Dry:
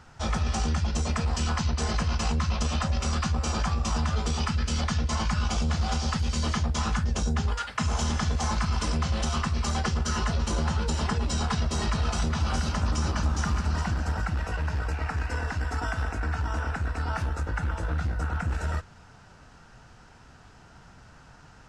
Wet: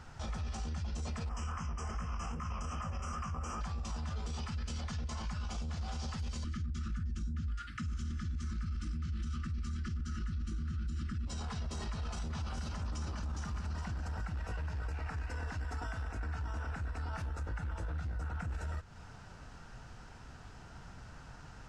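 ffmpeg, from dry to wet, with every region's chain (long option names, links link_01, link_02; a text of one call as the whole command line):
ffmpeg -i in.wav -filter_complex "[0:a]asettb=1/sr,asplit=3[link_01][link_02][link_03];[link_01]atrim=end=1.294[link_04];[link_02]atrim=start=1.29:end=3.61,asetpts=PTS-STARTPTS,afade=type=in:duration=0.004:curve=qsin,afade=type=out:start_time=2.316:duration=0.004:curve=qsin,equalizer=frequency=1200:width_type=o:width=0.3:gain=12.5,flanger=delay=17.5:depth=7.1:speed=2.6,asuperstop=centerf=4000:order=8:qfactor=2[link_05];[link_03]atrim=start=3.606[link_06];[link_04][link_05]acrossfade=duration=0.004:curve1=hsin:curve2=qsin[link_07];[link_07][link_06]acrossfade=duration=0.004:curve1=qsin:curve2=hsin,asettb=1/sr,asplit=3[link_08][link_09][link_10];[link_08]atrim=end=6.444[link_11];[link_09]atrim=start=6.44:end=11.27,asetpts=PTS-STARTPTS,afade=type=in:duration=0.004:curve=qsin,afade=type=out:start_time=4.826:duration=0.004:curve=qsin,asuperstop=centerf=650:order=20:qfactor=0.79,tiltshelf=frequency=1300:gain=5.5[link_12];[link_10]atrim=start=11.266[link_13];[link_11][link_12]acrossfade=duration=0.004:curve1=hsin:curve2=qsin[link_14];[link_14][link_13]acrossfade=duration=0.004:curve1=qsin:curve2=hsin,lowshelf=frequency=95:gain=6,acompressor=threshold=-34dB:ratio=3,alimiter=level_in=6dB:limit=-24dB:level=0:latency=1:release=22,volume=-6dB,volume=-1.5dB" out.wav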